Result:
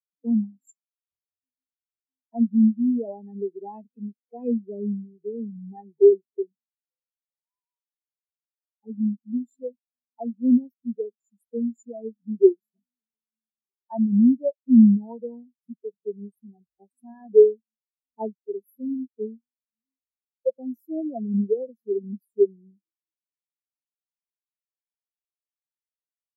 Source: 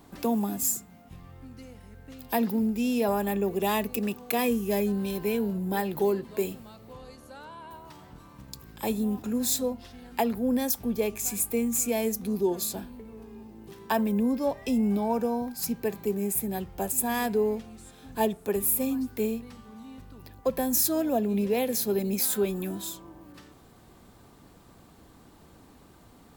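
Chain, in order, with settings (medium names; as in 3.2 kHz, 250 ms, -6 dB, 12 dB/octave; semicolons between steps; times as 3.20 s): spectral contrast expander 4:1; trim +7 dB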